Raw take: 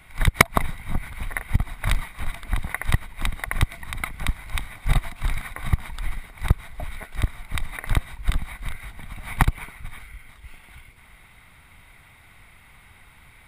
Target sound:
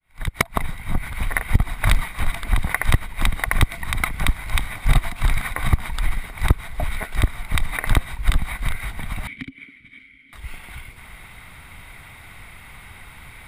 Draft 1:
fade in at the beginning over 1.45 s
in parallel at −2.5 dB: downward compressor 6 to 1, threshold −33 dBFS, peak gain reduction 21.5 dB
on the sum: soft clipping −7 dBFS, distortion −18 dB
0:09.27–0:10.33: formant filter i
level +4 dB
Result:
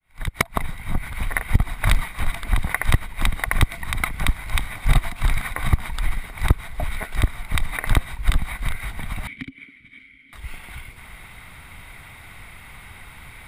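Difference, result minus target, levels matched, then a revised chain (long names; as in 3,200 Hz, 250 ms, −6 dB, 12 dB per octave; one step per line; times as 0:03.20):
downward compressor: peak gain reduction +5.5 dB
fade in at the beginning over 1.45 s
in parallel at −2.5 dB: downward compressor 6 to 1, threshold −26.5 dBFS, peak gain reduction 16 dB
on the sum: soft clipping −7 dBFS, distortion −18 dB
0:09.27–0:10.33: formant filter i
level +4 dB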